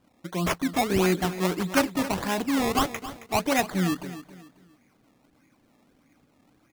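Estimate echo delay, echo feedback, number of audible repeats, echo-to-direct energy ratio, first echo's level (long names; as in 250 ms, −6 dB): 270 ms, 33%, 3, −13.5 dB, −14.0 dB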